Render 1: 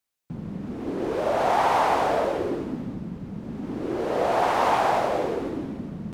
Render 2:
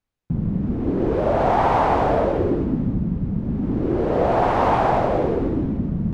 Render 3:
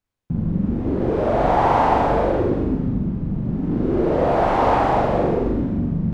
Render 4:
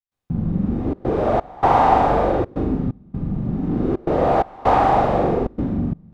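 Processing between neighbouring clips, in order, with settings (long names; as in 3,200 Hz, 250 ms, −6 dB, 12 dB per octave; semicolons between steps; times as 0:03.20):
RIAA equalisation playback; level +2 dB
flutter between parallel walls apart 7.2 metres, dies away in 0.59 s; level −1 dB
hollow resonant body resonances 770/1,200/3,700 Hz, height 7 dB; gate pattern ".xxxxxxx.xxx." 129 BPM −24 dB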